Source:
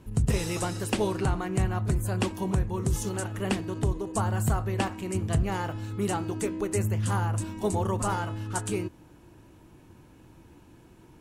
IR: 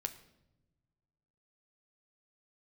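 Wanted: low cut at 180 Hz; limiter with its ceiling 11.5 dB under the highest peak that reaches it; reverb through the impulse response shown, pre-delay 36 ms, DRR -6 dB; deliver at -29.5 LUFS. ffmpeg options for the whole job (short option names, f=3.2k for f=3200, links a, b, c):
-filter_complex "[0:a]highpass=180,alimiter=level_in=1dB:limit=-24dB:level=0:latency=1,volume=-1dB,asplit=2[a][b];[1:a]atrim=start_sample=2205,adelay=36[c];[b][c]afir=irnorm=-1:irlink=0,volume=6.5dB[d];[a][d]amix=inputs=2:normalize=0,volume=-0.5dB"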